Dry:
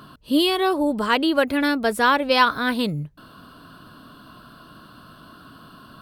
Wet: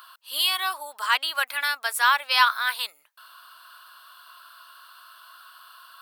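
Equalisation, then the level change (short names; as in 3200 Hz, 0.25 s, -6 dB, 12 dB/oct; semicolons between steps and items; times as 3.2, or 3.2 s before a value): HPF 990 Hz 24 dB/oct; high shelf 8900 Hz +10 dB; 0.0 dB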